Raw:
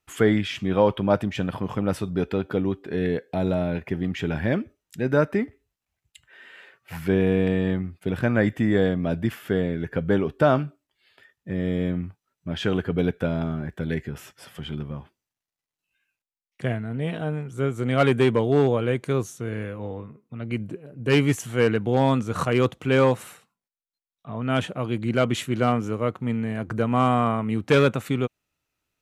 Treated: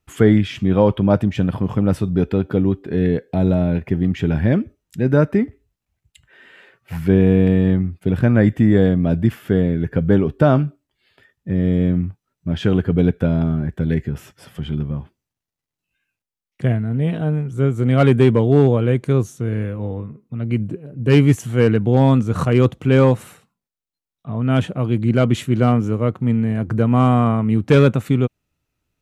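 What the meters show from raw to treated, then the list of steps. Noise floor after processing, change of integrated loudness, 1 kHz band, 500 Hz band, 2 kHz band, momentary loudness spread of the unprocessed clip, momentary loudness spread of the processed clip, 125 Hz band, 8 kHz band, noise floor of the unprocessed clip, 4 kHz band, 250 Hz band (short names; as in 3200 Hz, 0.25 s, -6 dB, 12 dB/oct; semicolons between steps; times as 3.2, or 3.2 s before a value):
-85 dBFS, +6.5 dB, +1.5 dB, +4.0 dB, +0.5 dB, 12 LU, 10 LU, +10.0 dB, n/a, under -85 dBFS, 0.0 dB, +7.5 dB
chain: low shelf 340 Hz +11.5 dB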